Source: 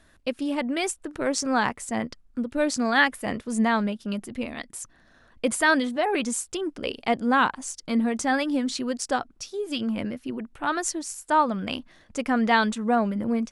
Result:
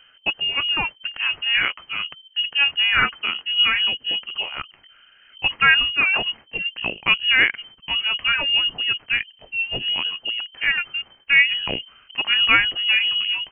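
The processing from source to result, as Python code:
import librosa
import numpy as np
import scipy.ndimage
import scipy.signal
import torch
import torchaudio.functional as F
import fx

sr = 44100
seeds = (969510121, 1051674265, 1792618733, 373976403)

y = fx.pitch_heads(x, sr, semitones=-1.0)
y = fx.freq_invert(y, sr, carrier_hz=3100)
y = y * 10.0 ** (5.5 / 20.0)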